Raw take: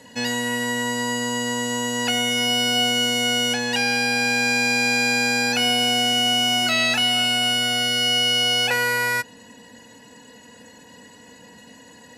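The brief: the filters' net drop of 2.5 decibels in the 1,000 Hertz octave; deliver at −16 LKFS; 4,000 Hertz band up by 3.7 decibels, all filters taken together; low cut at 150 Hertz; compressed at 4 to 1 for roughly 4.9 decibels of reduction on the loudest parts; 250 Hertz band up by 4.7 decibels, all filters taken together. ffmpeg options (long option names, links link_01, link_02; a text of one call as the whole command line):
ffmpeg -i in.wav -af "highpass=150,equalizer=frequency=250:width_type=o:gain=5.5,equalizer=frequency=1000:width_type=o:gain=-4.5,equalizer=frequency=4000:width_type=o:gain=6.5,acompressor=threshold=-20dB:ratio=4,volume=5dB" out.wav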